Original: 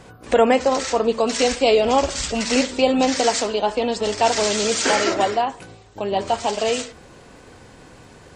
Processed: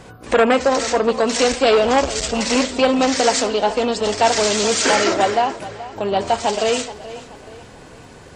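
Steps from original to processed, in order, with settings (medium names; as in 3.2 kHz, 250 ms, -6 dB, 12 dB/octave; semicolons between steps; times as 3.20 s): on a send: tape echo 429 ms, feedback 42%, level -15.5 dB, low-pass 4.5 kHz; on the sum: transformer saturation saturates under 1 kHz; trim +3.5 dB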